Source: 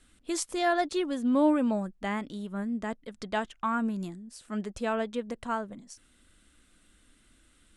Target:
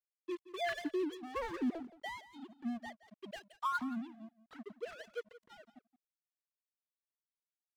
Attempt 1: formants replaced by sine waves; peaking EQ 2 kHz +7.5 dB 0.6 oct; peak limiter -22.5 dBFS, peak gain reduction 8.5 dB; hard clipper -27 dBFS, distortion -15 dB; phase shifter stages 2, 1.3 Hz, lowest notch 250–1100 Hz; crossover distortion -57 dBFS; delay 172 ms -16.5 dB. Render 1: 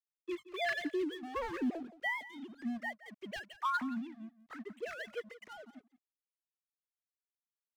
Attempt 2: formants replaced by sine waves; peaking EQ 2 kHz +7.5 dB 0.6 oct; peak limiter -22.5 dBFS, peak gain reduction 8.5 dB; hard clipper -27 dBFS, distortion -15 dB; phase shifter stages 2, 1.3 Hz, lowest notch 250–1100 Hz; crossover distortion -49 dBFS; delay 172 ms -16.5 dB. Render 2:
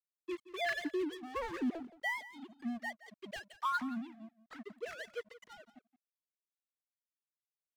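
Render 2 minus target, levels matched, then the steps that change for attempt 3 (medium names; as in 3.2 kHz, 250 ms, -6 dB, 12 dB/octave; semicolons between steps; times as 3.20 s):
2 kHz band +3.5 dB
change: peaking EQ 2 kHz -2.5 dB 0.6 oct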